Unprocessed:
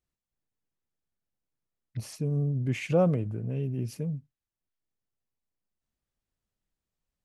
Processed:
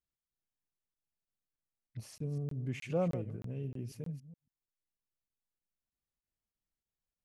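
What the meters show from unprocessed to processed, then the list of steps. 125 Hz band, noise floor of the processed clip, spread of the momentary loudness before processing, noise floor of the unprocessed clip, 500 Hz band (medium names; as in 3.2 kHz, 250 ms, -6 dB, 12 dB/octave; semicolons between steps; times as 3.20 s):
-9.5 dB, under -85 dBFS, 15 LU, under -85 dBFS, -8.5 dB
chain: chunks repeated in reverse 140 ms, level -12 dB; crackling interface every 0.31 s, samples 1024, zero, from 0.94 s; trim -9 dB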